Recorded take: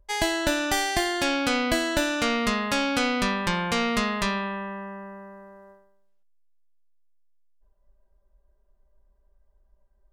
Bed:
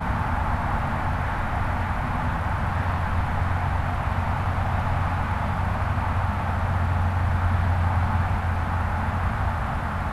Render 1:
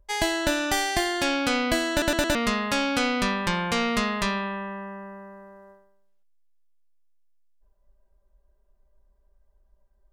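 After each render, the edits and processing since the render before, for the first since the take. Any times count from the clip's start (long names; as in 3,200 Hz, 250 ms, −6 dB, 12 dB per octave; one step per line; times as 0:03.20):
0:01.91: stutter in place 0.11 s, 4 plays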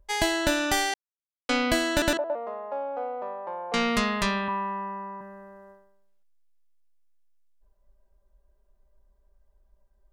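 0:00.94–0:01.49: silence
0:02.17–0:03.74: flat-topped band-pass 660 Hz, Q 1.7
0:04.48–0:05.21: loudspeaker in its box 180–7,700 Hz, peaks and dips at 620 Hz −4 dB, 1,000 Hz +10 dB, 1,600 Hz −6 dB, 3,400 Hz −7 dB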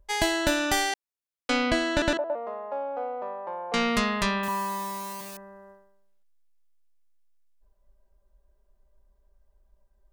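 0:01.70–0:02.45: high-frequency loss of the air 77 metres
0:04.43–0:05.37: spike at every zero crossing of −28.5 dBFS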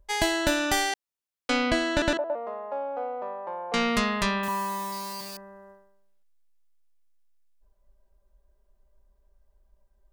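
0:04.92–0:05.41: parametric band 4,700 Hz +14 dB 0.22 octaves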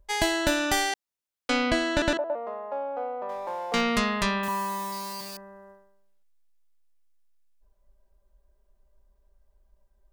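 0:03.29–0:03.81: mu-law and A-law mismatch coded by mu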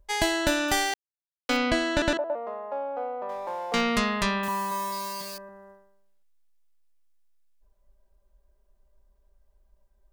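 0:00.68–0:01.57: centre clipping without the shift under −37.5 dBFS
0:04.70–0:05.49: double-tracking delay 12 ms −4.5 dB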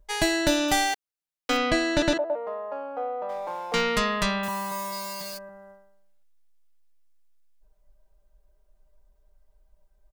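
comb filter 6.5 ms, depth 58%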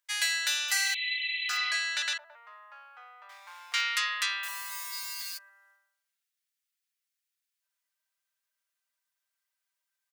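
0:00.74–0:01.71: healed spectral selection 2,000–4,200 Hz after
high-pass filter 1,500 Hz 24 dB per octave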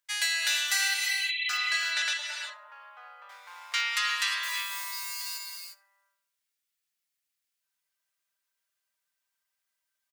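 repeating echo 74 ms, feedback 18%, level −23 dB
reverb whose tail is shaped and stops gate 380 ms rising, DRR 2.5 dB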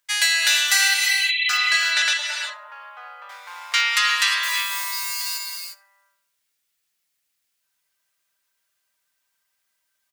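level +9 dB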